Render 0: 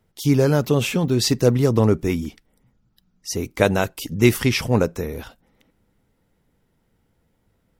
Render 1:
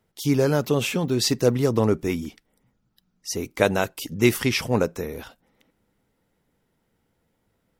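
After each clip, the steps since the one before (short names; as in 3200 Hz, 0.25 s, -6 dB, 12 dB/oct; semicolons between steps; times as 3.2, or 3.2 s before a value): low shelf 140 Hz -8 dB; gain -1.5 dB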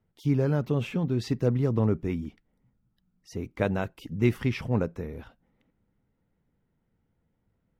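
tone controls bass +9 dB, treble -15 dB; gain -8.5 dB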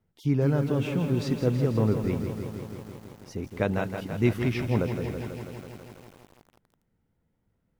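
lo-fi delay 0.164 s, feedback 80%, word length 8-bit, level -8 dB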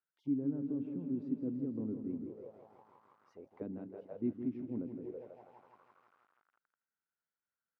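auto-wah 270–1500 Hz, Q 5, down, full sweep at -24.5 dBFS; gain -4.5 dB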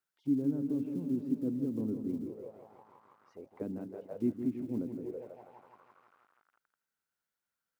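block floating point 7-bit; gain +4 dB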